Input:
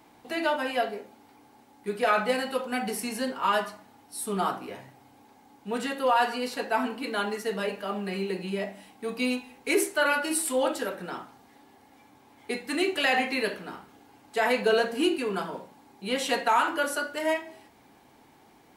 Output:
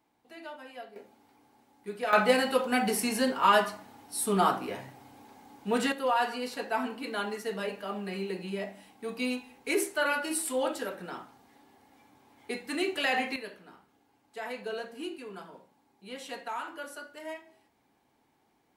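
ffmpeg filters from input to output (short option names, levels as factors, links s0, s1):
-af "asetnsamples=n=441:p=0,asendcmd='0.96 volume volume -7dB;2.13 volume volume 3dB;5.92 volume volume -4dB;13.36 volume volume -13.5dB',volume=0.141"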